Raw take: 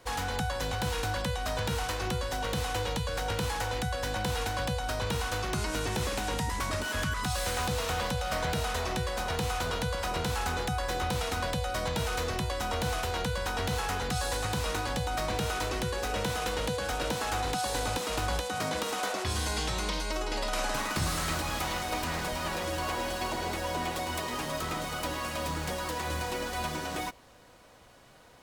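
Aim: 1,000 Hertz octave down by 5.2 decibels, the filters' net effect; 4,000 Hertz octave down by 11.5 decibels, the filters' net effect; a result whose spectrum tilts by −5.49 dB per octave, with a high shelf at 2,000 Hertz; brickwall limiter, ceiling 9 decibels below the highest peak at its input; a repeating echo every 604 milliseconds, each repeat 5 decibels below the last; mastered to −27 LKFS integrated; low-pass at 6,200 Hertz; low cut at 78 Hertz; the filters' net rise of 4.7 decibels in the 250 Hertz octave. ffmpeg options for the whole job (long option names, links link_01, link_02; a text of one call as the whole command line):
ffmpeg -i in.wav -af "highpass=78,lowpass=6200,equalizer=frequency=250:width_type=o:gain=7,equalizer=frequency=1000:width_type=o:gain=-6,highshelf=frequency=2000:gain=-7,equalizer=frequency=4000:width_type=o:gain=-7,alimiter=level_in=3.5dB:limit=-24dB:level=0:latency=1,volume=-3.5dB,aecho=1:1:604|1208|1812|2416|3020|3624|4228:0.562|0.315|0.176|0.0988|0.0553|0.031|0.0173,volume=8dB" out.wav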